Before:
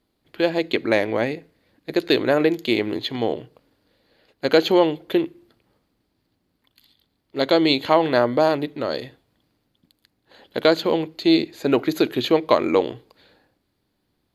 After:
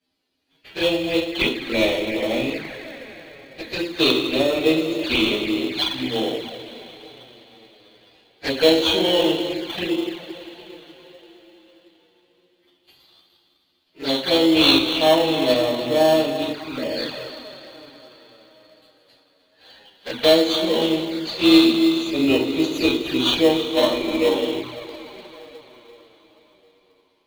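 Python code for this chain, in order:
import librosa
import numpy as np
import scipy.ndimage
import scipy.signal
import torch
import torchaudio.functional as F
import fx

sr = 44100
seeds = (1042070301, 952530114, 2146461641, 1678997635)

p1 = fx.hum_notches(x, sr, base_hz=50, count=9)
p2 = fx.stretch_vocoder(p1, sr, factor=1.9)
p3 = scipy.signal.sosfilt(scipy.signal.butter(4, 83.0, 'highpass', fs=sr, output='sos'), p2)
p4 = fx.rev_double_slope(p3, sr, seeds[0], early_s=0.37, late_s=4.9, knee_db=-18, drr_db=-7.0)
p5 = fx.dynamic_eq(p4, sr, hz=250.0, q=1.3, threshold_db=-25.0, ratio=4.0, max_db=3)
p6 = p5 + fx.echo_feedback(p5, sr, ms=305, feedback_pct=28, wet_db=-13.5, dry=0)
p7 = fx.env_flanger(p6, sr, rest_ms=11.4, full_db=-11.0)
p8 = fx.weighting(p7, sr, curve='D')
p9 = fx.sample_hold(p8, sr, seeds[1], rate_hz=2400.0, jitter_pct=0)
p10 = p8 + (p9 * librosa.db_to_amplitude(-9.5))
y = p10 * librosa.db_to_amplitude(-10.0)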